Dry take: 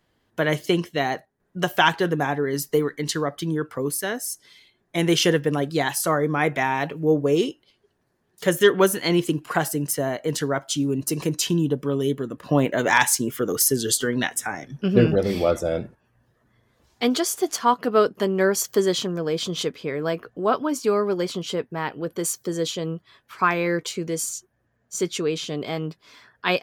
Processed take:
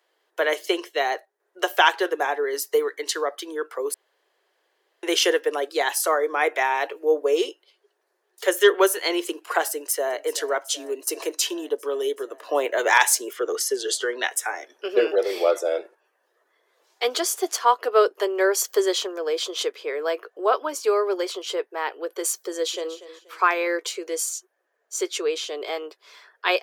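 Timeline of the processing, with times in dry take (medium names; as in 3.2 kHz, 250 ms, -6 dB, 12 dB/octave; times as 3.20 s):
3.94–5.03 s: room tone
9.72–10.21 s: echo throw 380 ms, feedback 80%, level -17 dB
13.33–14.24 s: distance through air 59 m
22.49–22.94 s: echo throw 240 ms, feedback 30%, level -14.5 dB
whole clip: steep high-pass 370 Hz 48 dB/octave; trim +1 dB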